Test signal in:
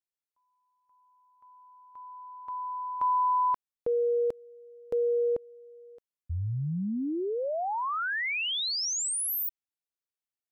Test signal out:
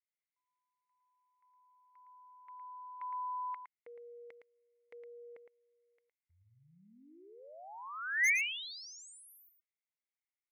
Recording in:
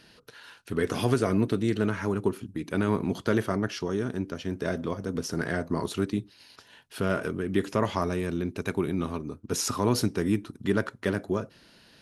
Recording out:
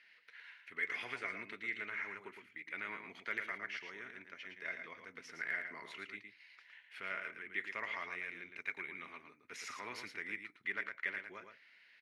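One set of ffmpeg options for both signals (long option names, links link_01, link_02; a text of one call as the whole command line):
ffmpeg -i in.wav -af "bandpass=frequency=2100:width_type=q:width=9.4:csg=0,aeval=exprs='0.0282*(abs(mod(val(0)/0.0282+3,4)-2)-1)':channel_layout=same,aecho=1:1:112:0.447,volume=7dB" out.wav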